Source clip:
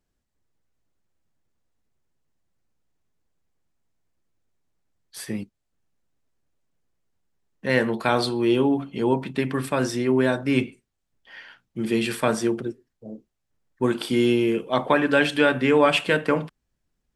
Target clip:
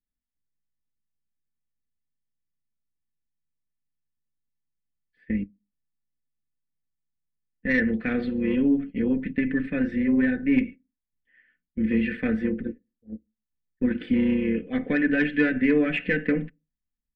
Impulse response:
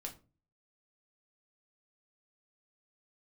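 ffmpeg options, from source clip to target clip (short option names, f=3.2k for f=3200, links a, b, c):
-filter_complex "[0:a]lowpass=7.7k,agate=range=-20dB:threshold=-35dB:ratio=16:detection=peak,firequalizer=gain_entry='entry(380,0);entry(960,-25);entry(1800,8);entry(3100,-9);entry(5700,-29)':delay=0.05:min_phase=1,tremolo=f=150:d=0.462,asplit=2[a][b];[1:a]atrim=start_sample=2205,asetrate=74970,aresample=44100[c];[b][c]afir=irnorm=-1:irlink=0,volume=-15.5dB[d];[a][d]amix=inputs=2:normalize=0,asoftclip=type=tanh:threshold=-9dB,bass=f=250:g=7,treble=f=4k:g=-6,asplit=2[e][f];[f]acompressor=threshold=-27dB:ratio=6,volume=-2dB[g];[e][g]amix=inputs=2:normalize=0,aecho=1:1:4:0.79,volume=-5.5dB"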